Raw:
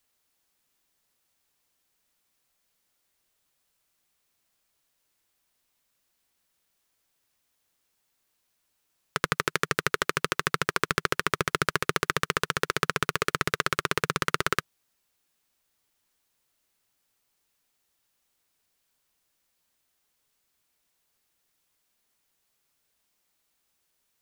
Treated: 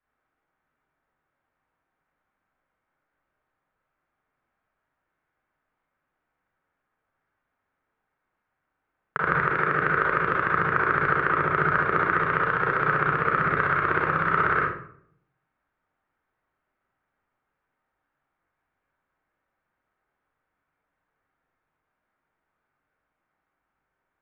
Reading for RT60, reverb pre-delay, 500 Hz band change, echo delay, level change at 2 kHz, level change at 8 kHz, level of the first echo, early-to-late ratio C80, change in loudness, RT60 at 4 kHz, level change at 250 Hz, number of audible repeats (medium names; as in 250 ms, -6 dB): 0.60 s, 30 ms, +3.5 dB, no echo, +5.0 dB, under -35 dB, no echo, 6.0 dB, +4.5 dB, 0.40 s, +4.0 dB, no echo